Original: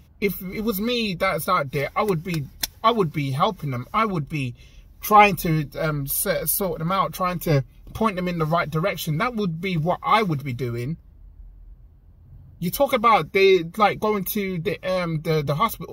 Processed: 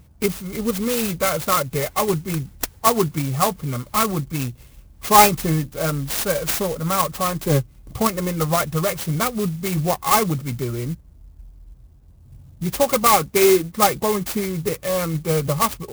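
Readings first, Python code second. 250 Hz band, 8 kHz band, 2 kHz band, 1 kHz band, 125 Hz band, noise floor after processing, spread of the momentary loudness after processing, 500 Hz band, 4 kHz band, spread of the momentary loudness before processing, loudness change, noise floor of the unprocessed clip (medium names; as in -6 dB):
+1.5 dB, +8.5 dB, -1.5 dB, +0.5 dB, +1.5 dB, -49 dBFS, 11 LU, +1.5 dB, +2.5 dB, 11 LU, +2.0 dB, -50 dBFS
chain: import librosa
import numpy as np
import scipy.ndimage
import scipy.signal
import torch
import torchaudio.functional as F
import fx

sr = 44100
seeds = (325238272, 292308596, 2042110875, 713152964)

y = fx.clock_jitter(x, sr, seeds[0], jitter_ms=0.081)
y = y * librosa.db_to_amplitude(1.5)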